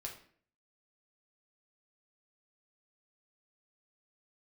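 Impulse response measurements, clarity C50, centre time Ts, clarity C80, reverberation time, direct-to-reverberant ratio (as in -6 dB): 8.0 dB, 21 ms, 12.0 dB, 0.55 s, -0.5 dB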